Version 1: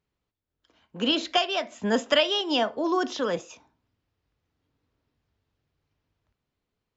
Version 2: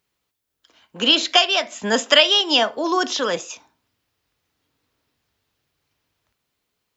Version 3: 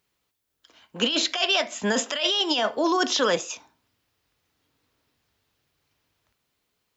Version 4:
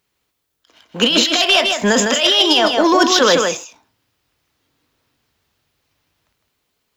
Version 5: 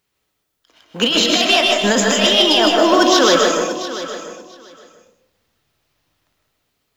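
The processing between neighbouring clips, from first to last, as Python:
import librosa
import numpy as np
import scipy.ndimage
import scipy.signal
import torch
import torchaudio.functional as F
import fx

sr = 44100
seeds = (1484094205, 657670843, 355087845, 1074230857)

y1 = fx.tilt_eq(x, sr, slope=2.5)
y1 = F.gain(torch.from_numpy(y1), 6.5).numpy()
y2 = fx.over_compress(y1, sr, threshold_db=-20.0, ratio=-1.0)
y2 = F.gain(torch.from_numpy(y2), -2.5).numpy()
y3 = fx.leveller(y2, sr, passes=1)
y3 = y3 + 10.0 ** (-4.5 / 20.0) * np.pad(y3, (int(156 * sr / 1000.0), 0))[:len(y3)]
y3 = fx.end_taper(y3, sr, db_per_s=150.0)
y3 = F.gain(torch.from_numpy(y3), 6.0).numpy()
y4 = fx.quant_companded(y3, sr, bits=8)
y4 = fx.echo_feedback(y4, sr, ms=689, feedback_pct=16, wet_db=-13.5)
y4 = fx.rev_freeverb(y4, sr, rt60_s=0.77, hf_ratio=0.3, predelay_ms=85, drr_db=2.0)
y4 = F.gain(torch.from_numpy(y4), -2.0).numpy()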